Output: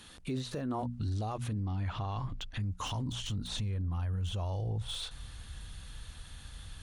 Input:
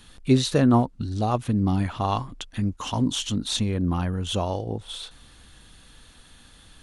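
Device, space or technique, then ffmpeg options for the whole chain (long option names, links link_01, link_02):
podcast mastering chain: -filter_complex "[0:a]asettb=1/sr,asplit=3[link_01][link_02][link_03];[link_01]atrim=end=1.664[link_04];[link_02]atrim=start=1.66:end=2.6,asetpts=PTS-STARTPTS,afade=type=in:duration=0.004:curve=qsin,afade=type=out:start_time=0.936:duration=0.004:curve=qsin,lowpass=5300[link_05];[link_03]atrim=start=2.596[link_06];[link_04][link_05]acrossfade=duration=0.004:curve1=hsin:curve2=qsin[link_07];[link_07][link_06]acrossfade=duration=0.004:curve1=qsin:curve2=hsin,asubboost=boost=10.5:cutoff=90,highpass=frequency=100:poles=1,bandreject=frequency=60:width_type=h:width=6,bandreject=frequency=120:width_type=h:width=6,bandreject=frequency=180:width_type=h:width=6,bandreject=frequency=240:width_type=h:width=6,deesser=0.95,acompressor=threshold=-26dB:ratio=4,alimiter=level_in=3.5dB:limit=-24dB:level=0:latency=1:release=12,volume=-3.5dB" -ar 48000 -c:a libmp3lame -b:a 96k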